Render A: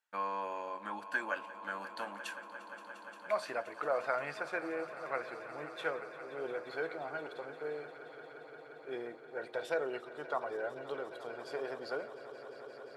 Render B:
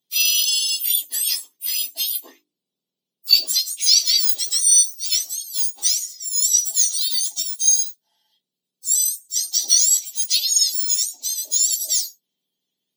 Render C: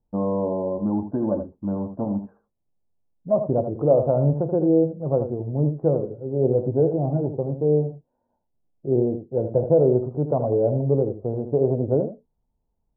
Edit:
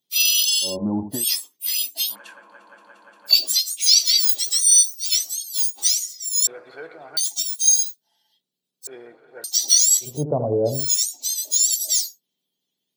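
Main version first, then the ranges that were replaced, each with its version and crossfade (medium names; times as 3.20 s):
B
0.69–1.17 s: from C, crossfade 0.16 s
2.11–3.30 s: from A, crossfade 0.10 s
6.47–7.17 s: from A
8.87–9.44 s: from A
10.12–10.77 s: from C, crossfade 0.24 s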